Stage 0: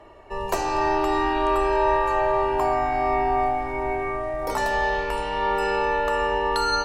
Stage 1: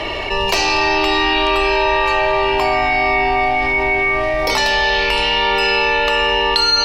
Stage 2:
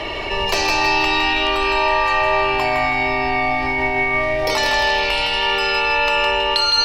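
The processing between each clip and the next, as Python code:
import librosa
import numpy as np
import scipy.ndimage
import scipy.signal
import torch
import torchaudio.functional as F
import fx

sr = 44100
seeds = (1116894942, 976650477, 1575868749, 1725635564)

y1 = fx.band_shelf(x, sr, hz=3400.0, db=15.0, octaves=1.7)
y1 = fx.env_flatten(y1, sr, amount_pct=70)
y1 = F.gain(torch.from_numpy(y1), -2.5).numpy()
y2 = fx.echo_feedback(y1, sr, ms=161, feedback_pct=42, wet_db=-5)
y2 = F.gain(torch.from_numpy(y2), -3.0).numpy()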